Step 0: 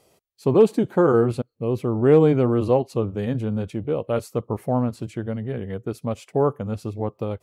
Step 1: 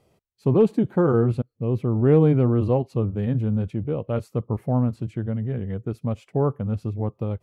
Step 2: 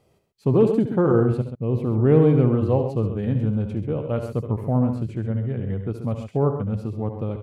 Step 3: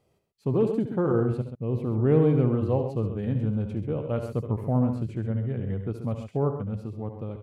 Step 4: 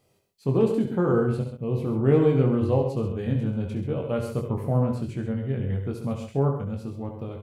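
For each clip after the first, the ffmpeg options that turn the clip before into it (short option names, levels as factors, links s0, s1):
-af "bass=f=250:g=9,treble=f=4000:g=-8,volume=0.596"
-af "aecho=1:1:70|72|92|132:0.141|0.299|0.178|0.335"
-af "dynaudnorm=f=220:g=11:m=1.5,volume=0.473"
-filter_complex "[0:a]highshelf=f=2400:g=8,asplit=2[s0][s1];[s1]aecho=0:1:22|64:0.596|0.224[s2];[s0][s2]amix=inputs=2:normalize=0"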